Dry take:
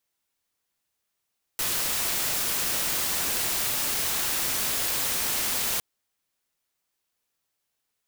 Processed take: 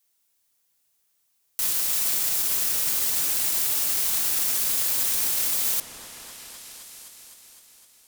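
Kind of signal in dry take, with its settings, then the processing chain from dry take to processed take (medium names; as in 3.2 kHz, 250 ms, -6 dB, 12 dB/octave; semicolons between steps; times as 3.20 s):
noise white, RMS -27 dBFS 4.21 s
treble shelf 4.4 kHz +12 dB; peak limiter -14.5 dBFS; delay with an opening low-pass 256 ms, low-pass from 750 Hz, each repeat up 1 oct, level -6 dB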